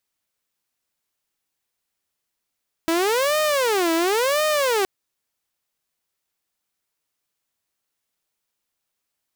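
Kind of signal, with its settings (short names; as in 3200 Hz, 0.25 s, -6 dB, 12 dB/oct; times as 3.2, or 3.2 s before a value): siren wail 327–616 Hz 0.95/s saw -15.5 dBFS 1.97 s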